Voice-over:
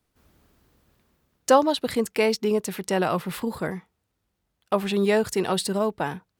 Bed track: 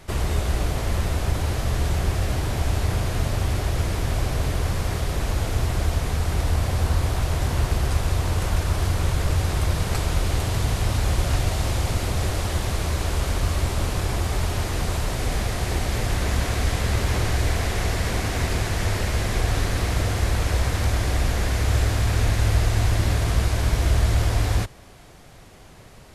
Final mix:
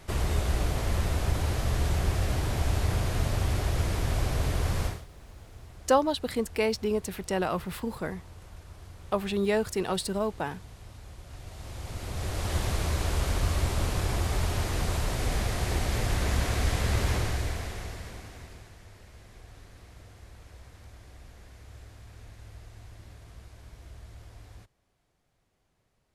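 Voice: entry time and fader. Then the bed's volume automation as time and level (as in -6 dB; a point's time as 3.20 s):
4.40 s, -5.0 dB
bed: 4.86 s -4 dB
5.07 s -24.5 dB
11.24 s -24.5 dB
12.56 s -4 dB
17.09 s -4 dB
18.84 s -27.5 dB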